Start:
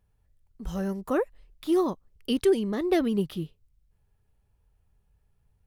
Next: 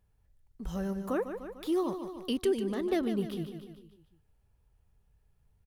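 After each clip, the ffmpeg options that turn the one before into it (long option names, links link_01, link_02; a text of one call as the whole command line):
ffmpeg -i in.wav -filter_complex "[0:a]aecho=1:1:149|298|447|596|745:0.299|0.146|0.0717|0.0351|0.0172,asplit=2[link_01][link_02];[link_02]acompressor=threshold=-33dB:ratio=6,volume=2.5dB[link_03];[link_01][link_03]amix=inputs=2:normalize=0,volume=-8.5dB" out.wav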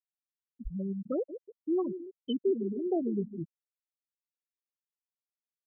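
ffmpeg -i in.wav -af "highshelf=frequency=3900:gain=9,afftfilt=real='re*gte(hypot(re,im),0.112)':imag='im*gte(hypot(re,im),0.112)':win_size=1024:overlap=0.75" out.wav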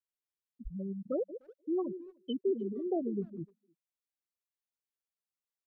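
ffmpeg -i in.wav -filter_complex "[0:a]adynamicequalizer=threshold=0.00398:dfrequency=560:dqfactor=2.6:tfrequency=560:tqfactor=2.6:attack=5:release=100:ratio=0.375:range=3:mode=boostabove:tftype=bell,asplit=2[link_01][link_02];[link_02]adelay=300,highpass=300,lowpass=3400,asoftclip=type=hard:threshold=-28dB,volume=-27dB[link_03];[link_01][link_03]amix=inputs=2:normalize=0,volume=-4dB" out.wav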